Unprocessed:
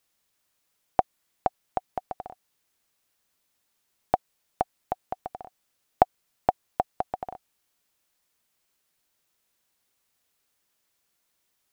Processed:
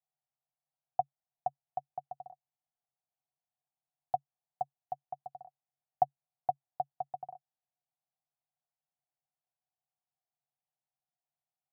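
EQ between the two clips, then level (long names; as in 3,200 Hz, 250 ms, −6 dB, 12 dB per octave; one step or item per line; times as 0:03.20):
pair of resonant band-passes 320 Hz, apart 2.4 octaves
−5.5 dB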